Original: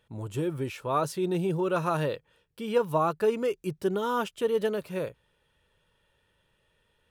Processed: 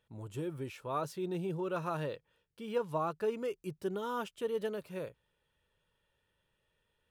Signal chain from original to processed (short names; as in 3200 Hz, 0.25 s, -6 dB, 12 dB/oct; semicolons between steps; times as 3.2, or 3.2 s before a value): 1.02–3.35 decimation joined by straight lines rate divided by 2×; gain -8.5 dB